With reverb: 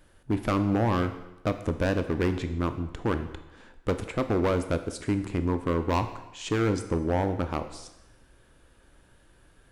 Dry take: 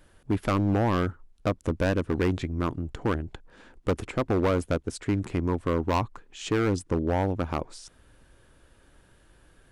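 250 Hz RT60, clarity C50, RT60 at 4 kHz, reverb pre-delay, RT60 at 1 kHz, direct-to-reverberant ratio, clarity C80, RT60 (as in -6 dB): 0.90 s, 11.0 dB, 0.90 s, 18 ms, 1.0 s, 9.0 dB, 13.0 dB, 0.95 s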